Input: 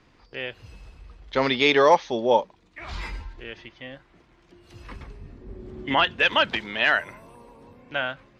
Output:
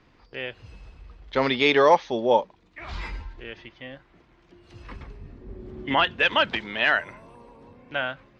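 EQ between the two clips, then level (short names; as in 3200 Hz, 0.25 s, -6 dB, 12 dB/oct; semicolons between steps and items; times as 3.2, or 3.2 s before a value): air absorption 68 m; 0.0 dB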